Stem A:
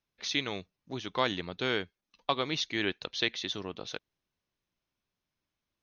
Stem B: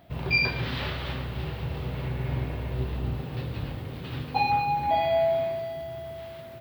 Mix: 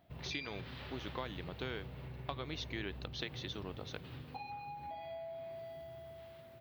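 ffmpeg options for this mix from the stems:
-filter_complex "[0:a]lowpass=f=3400:p=1,acompressor=threshold=0.0224:ratio=6,volume=0.562[s0];[1:a]acompressor=threshold=0.0316:ratio=10,volume=0.224[s1];[s0][s1]amix=inputs=2:normalize=0"

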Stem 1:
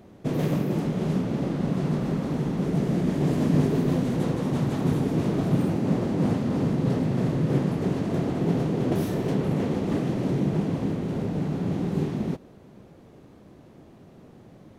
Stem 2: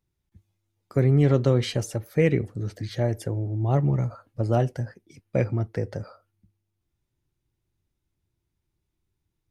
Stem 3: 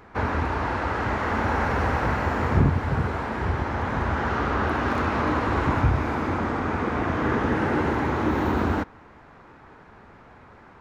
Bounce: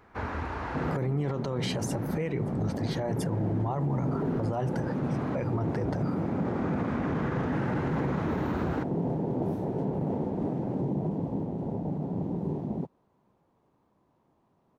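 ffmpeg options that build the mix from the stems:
-filter_complex "[0:a]afwtdn=0.0501,adelay=500,volume=0.562[s0];[1:a]bandreject=f=60:t=h:w=6,bandreject=f=120:t=h:w=6,volume=1,asplit=2[s1][s2];[2:a]volume=0.376[s3];[s2]apad=whole_len=476686[s4];[s3][s4]sidechaincompress=threshold=0.0224:ratio=8:attack=11:release=1010[s5];[s0][s1]amix=inputs=2:normalize=0,equalizer=f=970:w=1.9:g=13.5,alimiter=limit=0.178:level=0:latency=1:release=155,volume=1[s6];[s5][s6]amix=inputs=2:normalize=0,alimiter=limit=0.0891:level=0:latency=1:release=27"

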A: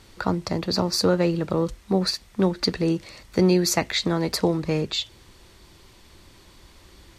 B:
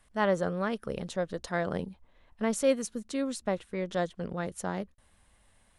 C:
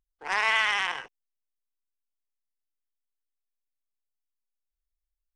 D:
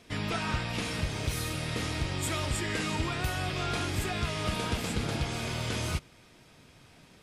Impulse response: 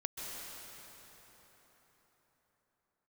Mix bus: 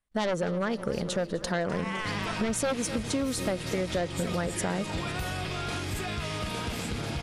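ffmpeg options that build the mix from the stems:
-filter_complex "[0:a]volume=0.112,asplit=2[s0][s1];[s1]volume=0.398[s2];[1:a]aeval=exprs='0.2*sin(PI/2*2.51*val(0)/0.2)':c=same,volume=0.841,asplit=2[s3][s4];[s4]volume=0.141[s5];[2:a]highpass=f=980:t=q:w=3.6,aemphasis=mode=production:type=bsi,adelay=1400,volume=0.188[s6];[3:a]alimiter=level_in=1.12:limit=0.0631:level=0:latency=1:release=29,volume=0.891,adelay=1950,volume=1.12[s7];[s2][s5]amix=inputs=2:normalize=0,aecho=0:1:254|508|762|1016|1270|1524|1778|2032|2286:1|0.59|0.348|0.205|0.121|0.0715|0.0422|0.0249|0.0147[s8];[s0][s3][s6][s7][s8]amix=inputs=5:normalize=0,agate=range=0.0282:threshold=0.00398:ratio=16:detection=peak,acompressor=threshold=0.0501:ratio=6"

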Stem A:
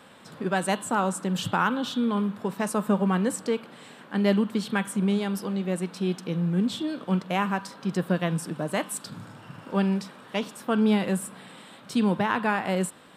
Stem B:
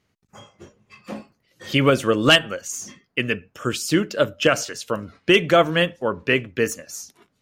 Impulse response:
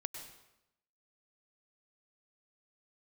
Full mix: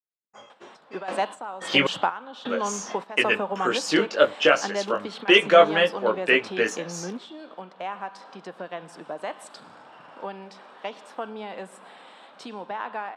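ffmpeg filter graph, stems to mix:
-filter_complex "[0:a]acompressor=threshold=0.0355:ratio=3,equalizer=f=770:t=o:w=0.9:g=7,adelay=500,volume=1,asplit=2[s0][s1];[s1]volume=0.0708[s2];[1:a]agate=range=0.0224:threshold=0.00355:ratio=3:detection=peak,flanger=delay=18.5:depth=2.2:speed=0.32,adynamicequalizer=threshold=0.02:dfrequency=1500:dqfactor=0.7:tfrequency=1500:tqfactor=0.7:attack=5:release=100:ratio=0.375:range=2.5:mode=cutabove:tftype=highshelf,volume=1.19,asplit=3[s3][s4][s5];[s3]atrim=end=1.87,asetpts=PTS-STARTPTS,afade=t=out:st=1.866:d=0.004:c=hsin[s6];[s4]atrim=start=1.87:end=2.45,asetpts=PTS-STARTPTS,volume=0[s7];[s5]atrim=start=2.45,asetpts=PTS-STARTPTS,afade=t=in:d=0.004:c=hsin[s8];[s6][s7][s8]concat=n=3:v=0:a=1,asplit=2[s9][s10];[s10]apad=whole_len=602638[s11];[s0][s11]sidechaingate=range=0.2:threshold=0.00282:ratio=16:detection=peak[s12];[2:a]atrim=start_sample=2205[s13];[s2][s13]afir=irnorm=-1:irlink=0[s14];[s12][s9][s14]amix=inputs=3:normalize=0,dynaudnorm=f=420:g=5:m=3.16,highpass=400,lowpass=5100"

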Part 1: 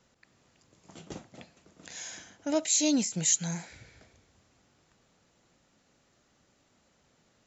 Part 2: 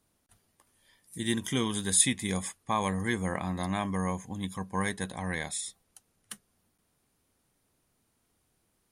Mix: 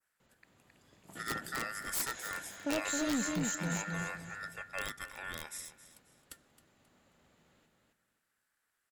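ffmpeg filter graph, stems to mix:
-filter_complex "[0:a]equalizer=f=5700:w=2.4:g=-11,alimiter=level_in=1.12:limit=0.0631:level=0:latency=1,volume=0.891,adelay=200,volume=0.841,asplit=2[s0][s1];[s1]volume=0.668[s2];[1:a]aeval=exprs='val(0)*sin(2*PI*1600*n/s)':c=same,aeval=exprs='(mod(8.41*val(0)+1,2)-1)/8.41':c=same,volume=0.531,asplit=2[s3][s4];[s4]volume=0.158[s5];[s2][s5]amix=inputs=2:normalize=0,aecho=0:1:267|534|801|1068:1|0.31|0.0961|0.0298[s6];[s0][s3][s6]amix=inputs=3:normalize=0,aeval=exprs='clip(val(0),-1,0.0355)':c=same,adynamicequalizer=threshold=0.00355:dfrequency=3300:dqfactor=0.85:tfrequency=3300:tqfactor=0.85:attack=5:release=100:ratio=0.375:range=2.5:mode=cutabove:tftype=bell"

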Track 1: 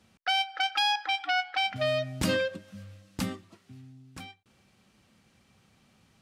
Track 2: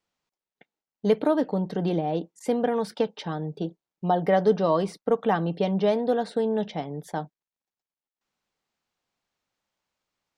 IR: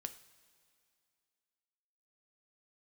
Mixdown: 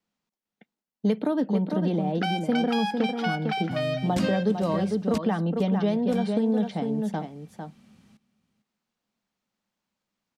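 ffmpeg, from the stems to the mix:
-filter_complex "[0:a]adelay=1950,volume=1.12,asplit=3[s0][s1][s2];[s0]atrim=end=5.18,asetpts=PTS-STARTPTS,afade=t=out:st=5.176:d=0.004:c=hsin[s3];[s1]atrim=start=5.18:end=5.72,asetpts=PTS-STARTPTS,volume=0[s4];[s2]atrim=start=5.72,asetpts=PTS-STARTPTS,afade=t=in:d=0.004:c=hsin[s5];[s3][s4][s5]concat=n=3:v=0:a=1,asplit=2[s6][s7];[s7]volume=0.141[s8];[1:a]volume=0.75,asplit=2[s9][s10];[s10]volume=0.422[s11];[s8][s11]amix=inputs=2:normalize=0,aecho=0:1:451:1[s12];[s6][s9][s12]amix=inputs=3:normalize=0,equalizer=f=210:w=2.1:g=12.5,acrossover=split=320|1700|7700[s13][s14][s15][s16];[s13]acompressor=threshold=0.0562:ratio=4[s17];[s14]acompressor=threshold=0.0501:ratio=4[s18];[s15]acompressor=threshold=0.0141:ratio=4[s19];[s16]acompressor=threshold=0.00178:ratio=4[s20];[s17][s18][s19][s20]amix=inputs=4:normalize=0"

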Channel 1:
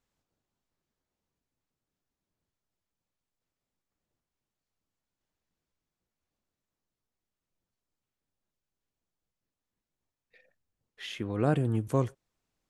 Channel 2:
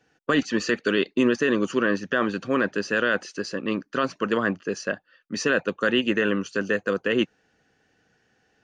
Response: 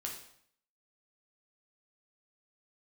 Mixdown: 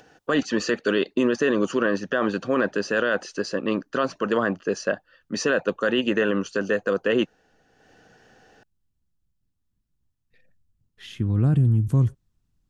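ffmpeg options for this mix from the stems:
-filter_complex "[0:a]asubboost=boost=8.5:cutoff=180,alimiter=limit=0.237:level=0:latency=1,volume=0.944[s0];[1:a]equalizer=f=660:w=1.1:g=5.5,acompressor=mode=upward:threshold=0.00501:ratio=2.5,volume=1.12[s1];[s0][s1]amix=inputs=2:normalize=0,equalizer=f=2200:w=4.3:g=-5,alimiter=limit=0.266:level=0:latency=1:release=40"

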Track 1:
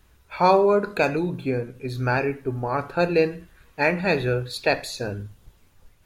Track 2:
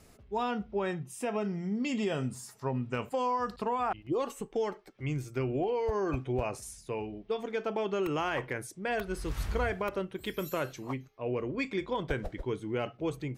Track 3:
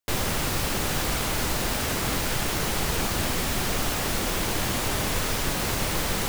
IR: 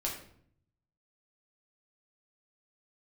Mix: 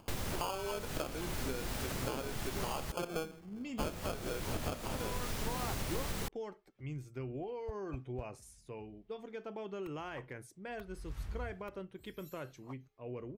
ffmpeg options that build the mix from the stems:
-filter_complex "[0:a]highpass=f=1100:p=1,acrusher=samples=23:mix=1:aa=0.000001,volume=0.891,asplit=2[s0][s1];[1:a]acontrast=80,adelay=1800,volume=0.106[s2];[2:a]volume=0.316,asplit=3[s3][s4][s5];[s3]atrim=end=2.92,asetpts=PTS-STARTPTS,afade=t=out:st=2.916:d=0.004:c=hsin[s6];[s4]atrim=start=2.92:end=3.81,asetpts=PTS-STARTPTS,volume=0[s7];[s5]atrim=start=3.81,asetpts=PTS-STARTPTS,afade=t=in:d=0.004:c=hsin[s8];[s6][s7][s8]concat=n=3:v=0:a=1[s9];[s1]apad=whole_len=669061[s10];[s2][s10]sidechaincompress=threshold=0.0141:ratio=8:attack=16:release=366[s11];[s0][s9]amix=inputs=2:normalize=0,acompressor=threshold=0.0158:ratio=10,volume=1[s12];[s11][s12]amix=inputs=2:normalize=0,acompressor=mode=upward:threshold=0.00158:ratio=2.5,lowshelf=f=260:g=5.5"

